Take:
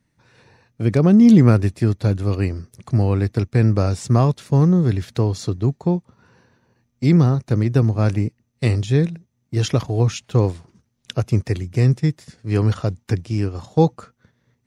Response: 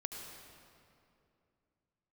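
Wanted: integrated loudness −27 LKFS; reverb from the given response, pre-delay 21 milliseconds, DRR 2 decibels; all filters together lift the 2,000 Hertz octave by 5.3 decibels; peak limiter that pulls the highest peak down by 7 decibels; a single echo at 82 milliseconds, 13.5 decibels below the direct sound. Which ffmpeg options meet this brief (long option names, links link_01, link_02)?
-filter_complex "[0:a]equalizer=frequency=2000:width_type=o:gain=6.5,alimiter=limit=-7.5dB:level=0:latency=1,aecho=1:1:82:0.211,asplit=2[link_01][link_02];[1:a]atrim=start_sample=2205,adelay=21[link_03];[link_02][link_03]afir=irnorm=-1:irlink=0,volume=-1dB[link_04];[link_01][link_04]amix=inputs=2:normalize=0,volume=-9dB"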